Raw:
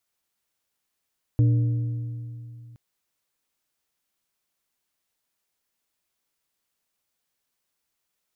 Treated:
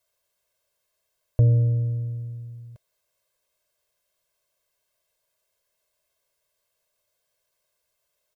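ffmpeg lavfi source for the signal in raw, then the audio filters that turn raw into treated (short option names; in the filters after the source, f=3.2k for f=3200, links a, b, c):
-f lavfi -i "aevalsrc='0.188*pow(10,-3*t/2.81)*sin(2*PI*118*t)+0.0501*pow(10,-3*t/2.135)*sin(2*PI*295*t)+0.0133*pow(10,-3*t/1.854)*sin(2*PI*472*t)+0.00355*pow(10,-3*t/1.734)*sin(2*PI*590*t)':d=1.37:s=44100"
-af "equalizer=f=620:t=o:w=0.45:g=10,aecho=1:1:1.9:0.86"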